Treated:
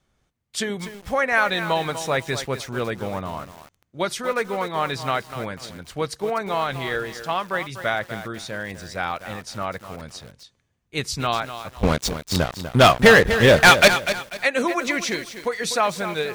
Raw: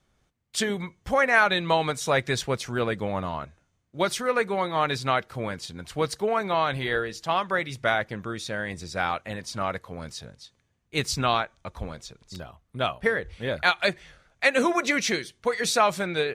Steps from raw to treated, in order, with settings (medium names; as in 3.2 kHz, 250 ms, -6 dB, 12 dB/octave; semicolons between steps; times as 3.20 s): 11.83–13.88 s: waveshaping leveller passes 5; bit-crushed delay 246 ms, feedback 35%, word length 6-bit, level -10 dB